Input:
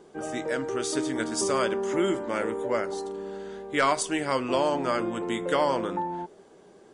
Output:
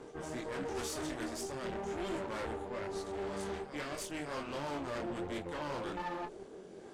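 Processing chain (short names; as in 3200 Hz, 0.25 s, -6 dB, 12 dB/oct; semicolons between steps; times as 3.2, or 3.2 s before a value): HPF 130 Hz 6 dB/oct; high shelf 7500 Hz -4 dB; reverse; compressor 8:1, threshold -35 dBFS, peak gain reduction 16 dB; reverse; reverse echo 0.61 s -14.5 dB; rotary speaker horn 0.8 Hz; one-sided clip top -51 dBFS; chorus voices 2, 1.4 Hz, delay 24 ms, depth 3.2 ms; tube stage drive 45 dB, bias 0.6; gain +11.5 dB; AAC 64 kbps 32000 Hz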